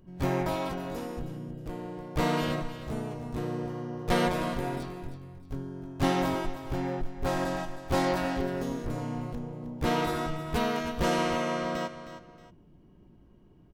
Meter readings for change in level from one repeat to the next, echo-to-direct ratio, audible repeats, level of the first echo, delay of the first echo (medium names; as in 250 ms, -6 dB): -9.5 dB, -11.5 dB, 2, -12.0 dB, 314 ms